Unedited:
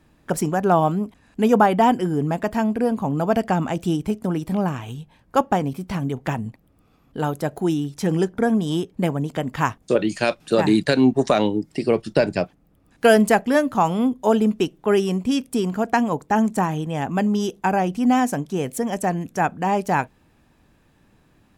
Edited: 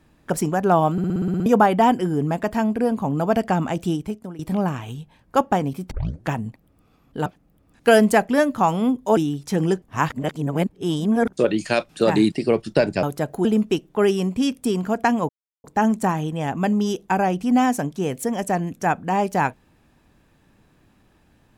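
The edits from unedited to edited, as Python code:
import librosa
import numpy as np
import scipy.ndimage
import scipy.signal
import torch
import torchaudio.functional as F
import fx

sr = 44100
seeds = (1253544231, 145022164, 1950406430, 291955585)

y = fx.edit(x, sr, fx.stutter_over(start_s=0.92, slice_s=0.06, count=9),
    fx.fade_out_to(start_s=3.83, length_s=0.56, floor_db=-18.0),
    fx.tape_start(start_s=5.91, length_s=0.38),
    fx.swap(start_s=7.26, length_s=0.42, other_s=12.43, other_length_s=1.91),
    fx.reverse_span(start_s=8.33, length_s=1.51),
    fx.cut(start_s=10.83, length_s=0.89),
    fx.insert_silence(at_s=16.18, length_s=0.35), tone=tone)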